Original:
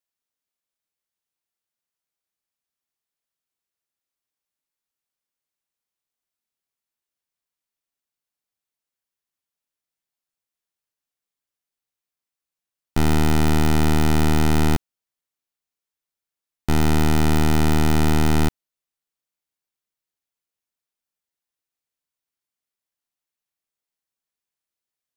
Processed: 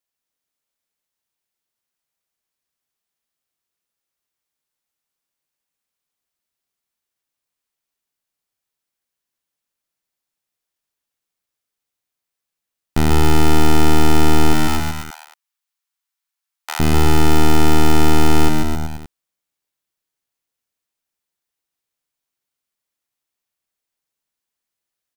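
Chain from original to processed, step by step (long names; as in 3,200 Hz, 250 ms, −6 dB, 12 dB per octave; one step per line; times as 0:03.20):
0:14.53–0:16.80: high-pass filter 850 Hz 24 dB per octave
on a send: bouncing-ball delay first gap 140 ms, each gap 0.9×, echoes 5
on the sum: level +3 dB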